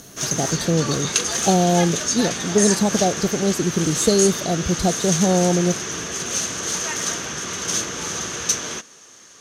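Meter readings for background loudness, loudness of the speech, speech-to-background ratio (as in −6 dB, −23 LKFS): −23.5 LKFS, −21.0 LKFS, 2.5 dB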